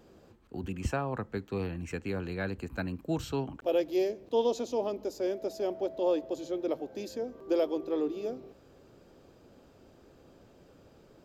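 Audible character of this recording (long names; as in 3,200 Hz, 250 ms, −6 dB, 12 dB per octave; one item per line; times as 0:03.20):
background noise floor −59 dBFS
spectral slope −6.0 dB per octave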